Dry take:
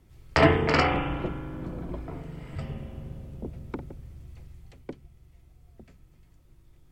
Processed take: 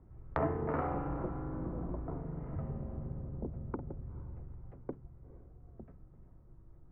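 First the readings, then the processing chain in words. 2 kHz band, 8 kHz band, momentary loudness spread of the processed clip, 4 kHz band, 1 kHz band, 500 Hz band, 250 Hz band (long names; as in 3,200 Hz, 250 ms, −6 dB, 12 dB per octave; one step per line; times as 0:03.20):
−21.0 dB, can't be measured, 21 LU, below −35 dB, −11.0 dB, −10.5 dB, −8.5 dB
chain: low-pass filter 1,300 Hz 24 dB per octave
downward compressor 2.5 to 1, threshold −36 dBFS, peak gain reduction 14.5 dB
feedback delay with all-pass diffusion 459 ms, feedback 40%, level −16 dB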